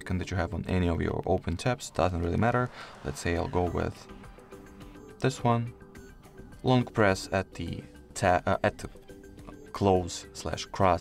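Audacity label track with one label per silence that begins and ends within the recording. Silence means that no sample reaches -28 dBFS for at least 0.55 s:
3.890000	5.220000	silence
5.630000	6.640000	silence
8.850000	9.750000	silence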